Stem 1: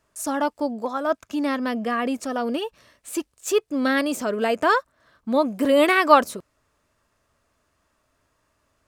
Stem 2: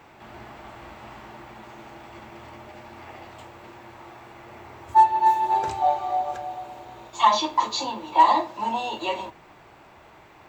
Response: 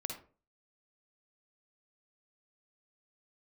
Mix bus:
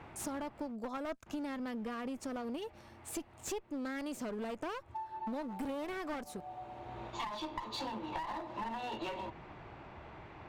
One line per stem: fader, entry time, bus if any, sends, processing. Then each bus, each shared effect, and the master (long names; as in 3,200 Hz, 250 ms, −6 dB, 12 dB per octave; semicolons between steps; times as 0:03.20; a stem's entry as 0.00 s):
−8.0 dB, 0.00 s, no send, slew-rate limiting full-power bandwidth 220 Hz
−2.5 dB, 0.00 s, muted 0:00.72–0:01.26, no send, low-pass filter 3,600 Hz 12 dB per octave; downward compressor 4 to 1, threshold −24 dBFS, peak gain reduction 11.5 dB; automatic ducking −13 dB, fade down 0.90 s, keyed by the first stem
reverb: not used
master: low-shelf EQ 230 Hz +9 dB; asymmetric clip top −33 dBFS; downward compressor 6 to 1, threshold −37 dBFS, peak gain reduction 15 dB